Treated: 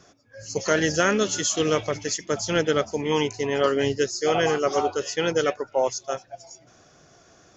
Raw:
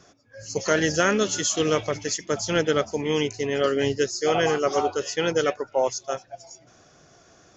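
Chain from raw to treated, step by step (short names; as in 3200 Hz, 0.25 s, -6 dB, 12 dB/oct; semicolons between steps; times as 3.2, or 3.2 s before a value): 3.11–3.82 bell 930 Hz +10.5 dB 0.5 oct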